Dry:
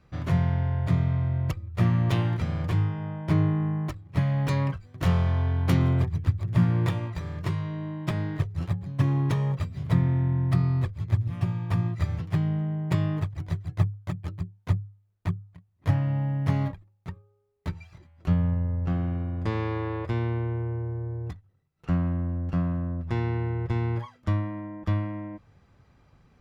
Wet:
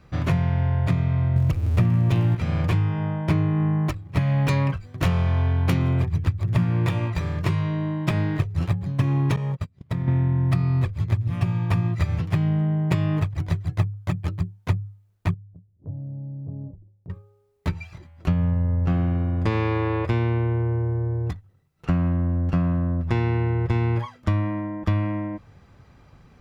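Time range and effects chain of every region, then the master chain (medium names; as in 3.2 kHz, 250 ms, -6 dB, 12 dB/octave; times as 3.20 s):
1.36–2.35 s: jump at every zero crossing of -37.5 dBFS + bass shelf 490 Hz +8.5 dB
9.36–10.08 s: gate -28 dBFS, range -31 dB + compression, threshold -30 dBFS
15.34–17.10 s: inverse Chebyshev low-pass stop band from 3.1 kHz, stop band 80 dB + compression 2:1, threshold -52 dBFS
whole clip: dynamic bell 2.5 kHz, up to +6 dB, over -60 dBFS, Q 6; compression, threshold -25 dBFS; trim +7.5 dB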